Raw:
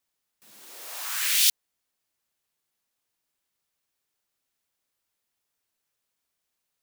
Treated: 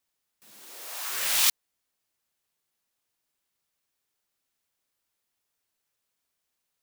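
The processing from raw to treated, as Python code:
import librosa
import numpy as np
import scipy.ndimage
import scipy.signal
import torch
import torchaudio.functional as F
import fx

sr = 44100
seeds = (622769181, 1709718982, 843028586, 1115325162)

y = fx.cycle_switch(x, sr, every=3, mode='muted', at=(1.09, 1.49), fade=0.02)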